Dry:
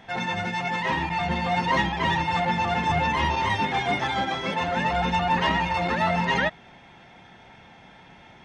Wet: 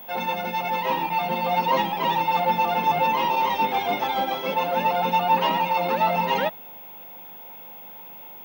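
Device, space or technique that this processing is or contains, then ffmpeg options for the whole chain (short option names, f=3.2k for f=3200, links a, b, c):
old television with a line whistle: -af "highpass=f=180:w=0.5412,highpass=f=180:w=1.3066,equalizer=f=520:t=q:w=4:g=8,equalizer=f=880:t=q:w=4:g=6,equalizer=f=1.8k:t=q:w=4:g=-9,equalizer=f=2.6k:t=q:w=4:g=4,lowpass=f=6.6k:w=0.5412,lowpass=f=6.6k:w=1.3066,aeval=exprs='val(0)+0.0126*sin(2*PI*15625*n/s)':c=same,volume=-1.5dB"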